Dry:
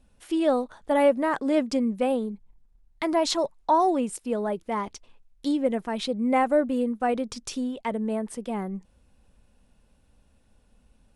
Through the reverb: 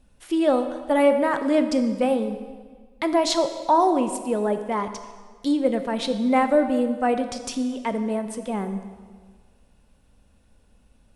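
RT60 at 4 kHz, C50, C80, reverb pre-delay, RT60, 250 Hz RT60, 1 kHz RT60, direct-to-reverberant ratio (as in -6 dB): 1.4 s, 9.5 dB, 10.5 dB, 13 ms, 1.6 s, 1.7 s, 1.6 s, 8.0 dB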